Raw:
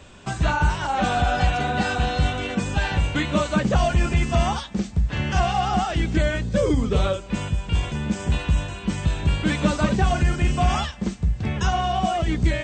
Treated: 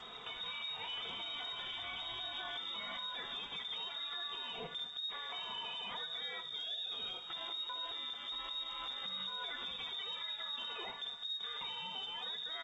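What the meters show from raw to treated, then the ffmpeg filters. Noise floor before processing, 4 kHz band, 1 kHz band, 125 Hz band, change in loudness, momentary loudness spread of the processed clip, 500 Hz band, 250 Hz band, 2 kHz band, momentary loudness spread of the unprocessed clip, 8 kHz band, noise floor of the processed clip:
-37 dBFS, -3.5 dB, -22.5 dB, under -40 dB, -17.0 dB, 2 LU, -27.5 dB, -36.5 dB, -18.0 dB, 5 LU, under -25 dB, -48 dBFS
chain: -af "acompressor=threshold=-32dB:ratio=16,bandreject=f=60:t=h:w=6,bandreject=f=120:t=h:w=6,bandreject=f=180:t=h:w=6,bandreject=f=240:t=h:w=6,aecho=1:1:3.9:0.57,lowpass=f=3.2k:t=q:w=0.5098,lowpass=f=3.2k:t=q:w=0.6013,lowpass=f=3.2k:t=q:w=0.9,lowpass=f=3.2k:t=q:w=2.563,afreqshift=-3800,equalizer=f=2.8k:w=1:g=-14.5,alimiter=level_in=16.5dB:limit=-24dB:level=0:latency=1:release=19,volume=-16.5dB,aecho=1:1:20|73:0.188|0.251,volume=5.5dB" -ar 16000 -c:a g722

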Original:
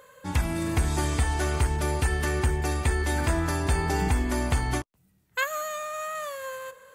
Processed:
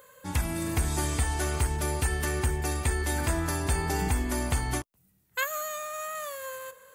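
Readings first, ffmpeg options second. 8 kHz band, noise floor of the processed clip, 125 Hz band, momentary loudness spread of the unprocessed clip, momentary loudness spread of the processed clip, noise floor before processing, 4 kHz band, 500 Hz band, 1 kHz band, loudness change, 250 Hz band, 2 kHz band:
+2.5 dB, -67 dBFS, -3.0 dB, 7 LU, 7 LU, -65 dBFS, -1.5 dB, -3.0 dB, -3.0 dB, -2.0 dB, -3.0 dB, -2.5 dB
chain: -af "highshelf=f=8.6k:g=11.5,volume=-3dB"

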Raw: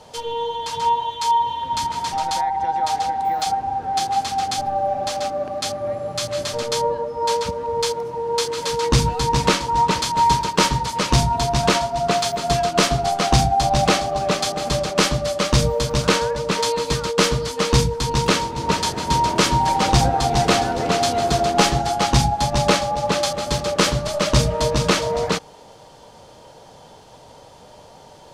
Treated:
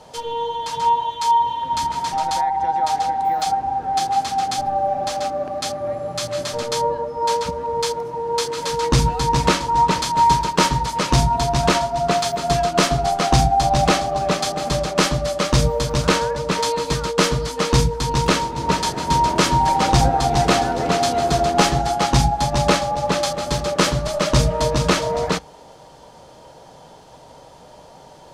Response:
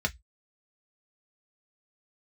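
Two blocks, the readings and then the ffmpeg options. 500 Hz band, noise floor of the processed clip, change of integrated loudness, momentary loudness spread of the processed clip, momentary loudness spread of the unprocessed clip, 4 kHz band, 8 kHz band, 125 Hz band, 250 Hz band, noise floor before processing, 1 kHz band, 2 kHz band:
0.0 dB, -45 dBFS, +0.5 dB, 7 LU, 6 LU, -1.5 dB, -0.5 dB, +1.0 dB, +1.0 dB, -45 dBFS, +1.5 dB, 0.0 dB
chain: -filter_complex "[0:a]equalizer=f=240:t=o:w=0.45:g=2.5,asplit=2[a][b];[1:a]atrim=start_sample=2205[c];[b][c]afir=irnorm=-1:irlink=0,volume=-21dB[d];[a][d]amix=inputs=2:normalize=0"

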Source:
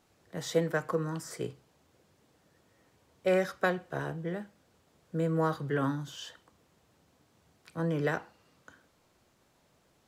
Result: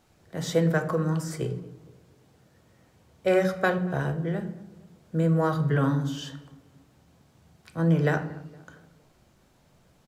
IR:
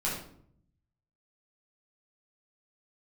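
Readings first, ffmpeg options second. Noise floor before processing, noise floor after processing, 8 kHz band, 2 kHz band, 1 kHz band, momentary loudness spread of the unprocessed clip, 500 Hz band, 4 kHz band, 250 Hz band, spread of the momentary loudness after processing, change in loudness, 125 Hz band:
-69 dBFS, -62 dBFS, +3.5 dB, +4.5 dB, +4.5 dB, 13 LU, +4.5 dB, +3.5 dB, +7.5 dB, 17 LU, +6.0 dB, +10.0 dB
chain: -filter_complex "[0:a]lowshelf=f=190:g=3.5,asplit=2[a][b];[b]adelay=232,lowpass=f=1.6k:p=1,volume=-20dB,asplit=2[c][d];[d]adelay=232,lowpass=f=1.6k:p=1,volume=0.47,asplit=2[e][f];[f]adelay=232,lowpass=f=1.6k:p=1,volume=0.47,asplit=2[g][h];[h]adelay=232,lowpass=f=1.6k:p=1,volume=0.47[i];[a][c][e][g][i]amix=inputs=5:normalize=0,asplit=2[j][k];[1:a]atrim=start_sample=2205,lowshelf=f=320:g=8[l];[k][l]afir=irnorm=-1:irlink=0,volume=-14.5dB[m];[j][m]amix=inputs=2:normalize=0,volume=2dB"

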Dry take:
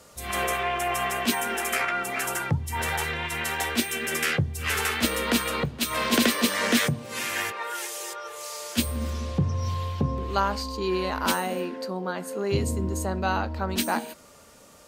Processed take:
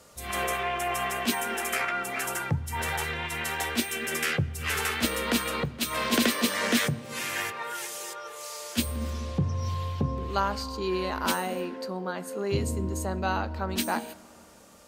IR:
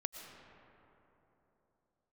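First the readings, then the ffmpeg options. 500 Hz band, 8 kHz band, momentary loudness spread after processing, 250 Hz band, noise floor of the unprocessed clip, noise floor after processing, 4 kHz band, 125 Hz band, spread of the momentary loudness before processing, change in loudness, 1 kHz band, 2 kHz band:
-2.5 dB, -2.5 dB, 8 LU, -2.5 dB, -52 dBFS, -51 dBFS, -2.5 dB, -2.5 dB, 8 LU, -2.5 dB, -2.5 dB, -2.5 dB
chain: -filter_complex "[0:a]asplit=2[a][b];[1:a]atrim=start_sample=2205,asetrate=52920,aresample=44100[c];[b][c]afir=irnorm=-1:irlink=0,volume=-13.5dB[d];[a][d]amix=inputs=2:normalize=0,volume=-3.5dB"

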